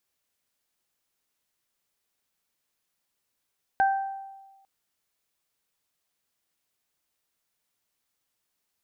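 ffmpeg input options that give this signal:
ffmpeg -f lavfi -i "aevalsrc='0.133*pow(10,-3*t/1.25)*sin(2*PI*781*t)+0.0631*pow(10,-3*t/0.64)*sin(2*PI*1562*t)':duration=0.85:sample_rate=44100" out.wav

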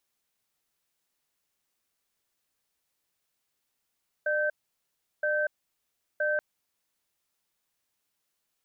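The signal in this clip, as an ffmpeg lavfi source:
ffmpeg -f lavfi -i "aevalsrc='0.0447*(sin(2*PI*600*t)+sin(2*PI*1550*t))*clip(min(mod(t,0.97),0.24-mod(t,0.97))/0.005,0,1)':duration=2.13:sample_rate=44100" out.wav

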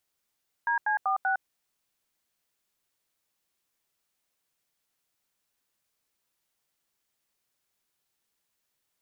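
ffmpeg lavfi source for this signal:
ffmpeg -f lavfi -i "aevalsrc='0.0501*clip(min(mod(t,0.193),0.109-mod(t,0.193))/0.002,0,1)*(eq(floor(t/0.193),0)*(sin(2*PI*941*mod(t,0.193))+sin(2*PI*1633*mod(t,0.193)))+eq(floor(t/0.193),1)*(sin(2*PI*852*mod(t,0.193))+sin(2*PI*1633*mod(t,0.193)))+eq(floor(t/0.193),2)*(sin(2*PI*770*mod(t,0.193))+sin(2*PI*1209*mod(t,0.193)))+eq(floor(t/0.193),3)*(sin(2*PI*770*mod(t,0.193))+sin(2*PI*1477*mod(t,0.193))))':duration=0.772:sample_rate=44100" out.wav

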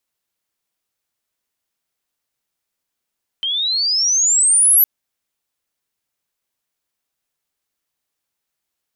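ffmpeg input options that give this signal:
ffmpeg -f lavfi -i "aevalsrc='pow(10,(-18+10*t/1.41)/20)*sin(2*PI*3100*1.41/log(12000/3100)*(exp(log(12000/3100)*t/1.41)-1))':duration=1.41:sample_rate=44100" out.wav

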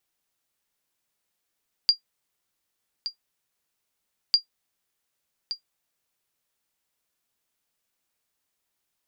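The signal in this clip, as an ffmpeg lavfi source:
ffmpeg -f lavfi -i "aevalsrc='0.355*(sin(2*PI*4780*mod(t,2.45))*exp(-6.91*mod(t,2.45)/0.11)+0.251*sin(2*PI*4780*max(mod(t,2.45)-1.17,0))*exp(-6.91*max(mod(t,2.45)-1.17,0)/0.11))':duration=4.9:sample_rate=44100" out.wav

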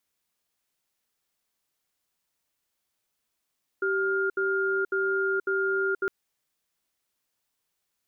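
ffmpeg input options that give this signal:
ffmpeg -f lavfi -i "aevalsrc='0.0501*(sin(2*PI*387*t)+sin(2*PI*1410*t))*clip(min(mod(t,0.55),0.48-mod(t,0.55))/0.005,0,1)':duration=2.26:sample_rate=44100" out.wav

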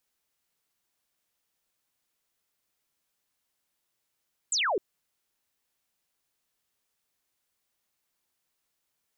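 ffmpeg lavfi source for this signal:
ffmpeg -f lavfi -i "aevalsrc='0.0631*clip(t/0.002,0,1)*clip((0.26-t)/0.002,0,1)*sin(2*PI*8300*0.26/log(340/8300)*(exp(log(340/8300)*t/0.26)-1))':duration=0.26:sample_rate=44100" out.wav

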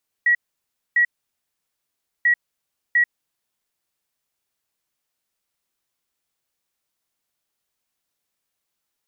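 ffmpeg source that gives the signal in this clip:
ffmpeg -f lavfi -i "aevalsrc='0.224*sin(2*PI*1920*t)*clip(min(mod(mod(t,1.99),0.7),0.09-mod(mod(t,1.99),0.7))/0.005,0,1)*lt(mod(t,1.99),1.4)':duration=3.98:sample_rate=44100" out.wav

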